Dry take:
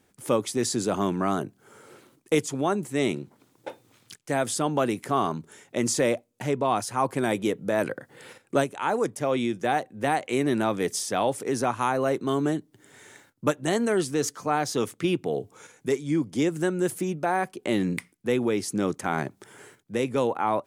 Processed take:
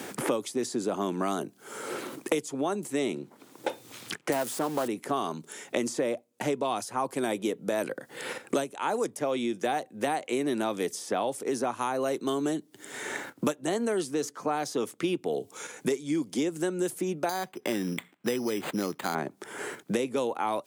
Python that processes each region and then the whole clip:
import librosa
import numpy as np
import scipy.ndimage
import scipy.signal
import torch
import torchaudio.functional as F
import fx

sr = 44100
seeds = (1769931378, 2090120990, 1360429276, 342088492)

y = fx.chain(x, sr, fx.crossing_spikes(level_db=-19.5),
    fx.quant_float(bits=2),
    fx.doppler_dist(depth_ms=0.17), at=(4.32, 4.88))
y = fx.chain(y, sr, fx.resample_bad(factor=8, down='none', up='hold'),
    fx.peak_eq(hz=430.0, db=-6.5, octaves=2.8), at=(17.29, 19.15))
y = scipy.signal.sosfilt(scipy.signal.butter(2, 220.0, 'highpass', fs=sr, output='sos'), y)
y = fx.dynamic_eq(y, sr, hz=1800.0, q=0.95, threshold_db=-42.0, ratio=4.0, max_db=-4)
y = fx.band_squash(y, sr, depth_pct=100)
y = y * 10.0 ** (-3.0 / 20.0)